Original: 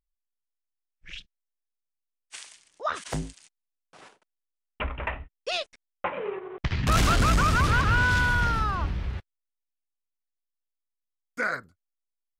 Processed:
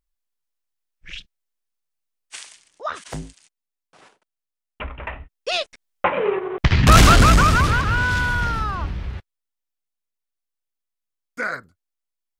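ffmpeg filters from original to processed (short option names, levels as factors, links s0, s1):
-af "volume=7.5,afade=t=out:st=2.36:d=0.65:silence=0.501187,afade=t=in:st=5.07:d=1.2:silence=0.251189,afade=t=out:st=6.93:d=0.89:silence=0.334965"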